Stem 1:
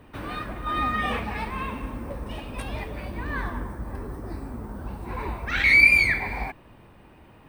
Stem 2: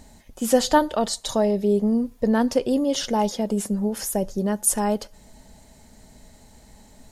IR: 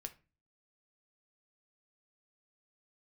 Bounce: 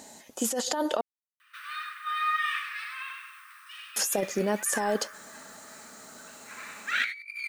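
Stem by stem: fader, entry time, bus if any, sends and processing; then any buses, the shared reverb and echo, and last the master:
-3.5 dB, 1.40 s, no send, echo send -5 dB, steep high-pass 1.2 kHz 72 dB/octave
-1.5 dB, 0.00 s, muted 1.01–3.96 s, no send, no echo send, peaking EQ 6.8 kHz +5 dB 0.44 oct; compressor with a negative ratio -24 dBFS, ratio -1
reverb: none
echo: delay 98 ms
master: high-pass 320 Hz 12 dB/octave; band-stop 2.2 kHz, Q 30; compressor with a negative ratio -28 dBFS, ratio -0.5

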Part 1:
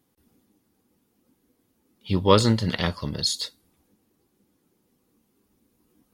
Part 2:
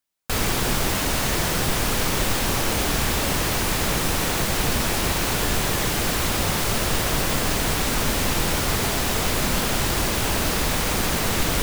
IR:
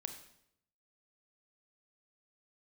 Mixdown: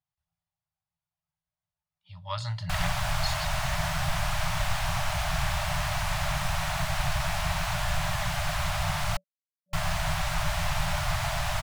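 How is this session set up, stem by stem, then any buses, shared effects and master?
2.13 s -18.5 dB -> 2.53 s -7.5 dB, 0.00 s, no send, treble shelf 8.9 kHz -11 dB
-3.0 dB, 2.40 s, muted 9.17–9.73 s, no send, treble shelf 3.3 kHz -8 dB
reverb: none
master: FFT band-reject 180–580 Hz; treble shelf 12 kHz -8.5 dB

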